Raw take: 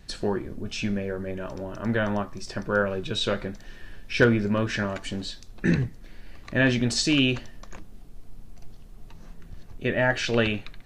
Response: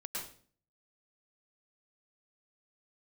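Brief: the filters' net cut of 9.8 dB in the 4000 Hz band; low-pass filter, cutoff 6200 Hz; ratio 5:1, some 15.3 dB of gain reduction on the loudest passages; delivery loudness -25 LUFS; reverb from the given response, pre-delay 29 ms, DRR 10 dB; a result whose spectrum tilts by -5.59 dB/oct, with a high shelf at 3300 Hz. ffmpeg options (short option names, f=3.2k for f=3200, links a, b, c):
-filter_complex "[0:a]lowpass=6.2k,highshelf=f=3.3k:g=-6.5,equalizer=f=4k:t=o:g=-8.5,acompressor=threshold=-32dB:ratio=5,asplit=2[a][b];[1:a]atrim=start_sample=2205,adelay=29[c];[b][c]afir=irnorm=-1:irlink=0,volume=-10.5dB[d];[a][d]amix=inputs=2:normalize=0,volume=11.5dB"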